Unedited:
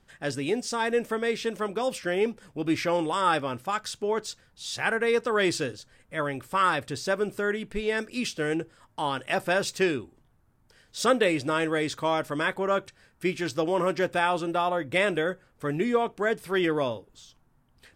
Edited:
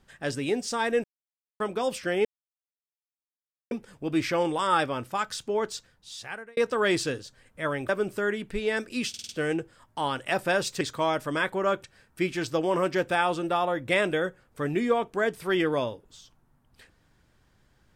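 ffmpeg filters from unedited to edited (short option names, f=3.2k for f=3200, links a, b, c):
-filter_complex "[0:a]asplit=11[a][b][c][d][e][f][g][h][i][j][k];[a]atrim=end=1.04,asetpts=PTS-STARTPTS,afade=t=out:st=1.036:d=0.004:c=hsin[l];[b]atrim=start=1.04:end=1.6,asetpts=PTS-STARTPTS,volume=0[m];[c]atrim=start=1.6:end=2.25,asetpts=PTS-STARTPTS,afade=t=in:d=0.004:c=hsin,afade=t=out:st=0.646:d=0.004:c=hsin,apad=pad_dur=1.46[n];[d]atrim=start=2.25:end=5.11,asetpts=PTS-STARTPTS,afade=t=in:d=0.004:c=hsin,afade=t=out:st=2:d=0.86[o];[e]atrim=start=5.11:end=6.432,asetpts=PTS-STARTPTS,afade=t=in:d=0.004:c=hsin[p];[f]atrim=start=7.098:end=8.352[q];[g]atrim=start=8.298:end=8.352[r];[h]atrim=start=8.298:end=8.352[s];[i]atrim=start=8.298:end=8.352[t];[j]atrim=start=8.298:end=9.822[u];[k]atrim=start=11.848[v];[l][m][n][o][p]concat=n=5:v=0:a=1[w];[w][q]acrossfade=d=0.004:c1=hsin:c2=hsin[x];[x][r]acrossfade=d=0.004:c1=hsin:c2=hsin[y];[y][s]acrossfade=d=0.004:c1=hsin:c2=hsin[z];[z][t]acrossfade=d=0.004:c1=hsin:c2=hsin[aa];[aa][u]acrossfade=d=0.004:c1=hsin:c2=hsin[ab];[ab][v]acrossfade=d=0.004:c1=hsin:c2=hsin"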